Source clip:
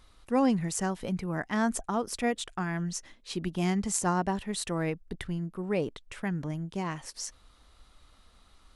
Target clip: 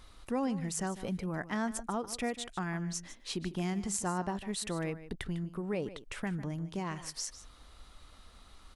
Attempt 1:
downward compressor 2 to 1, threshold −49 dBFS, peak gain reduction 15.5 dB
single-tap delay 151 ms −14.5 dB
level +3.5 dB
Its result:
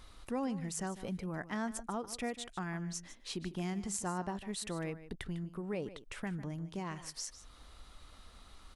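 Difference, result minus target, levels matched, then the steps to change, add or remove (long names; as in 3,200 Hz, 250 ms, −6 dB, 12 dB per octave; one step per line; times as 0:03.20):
downward compressor: peak gain reduction +3.5 dB
change: downward compressor 2 to 1, threshold −42 dBFS, peak gain reduction 12 dB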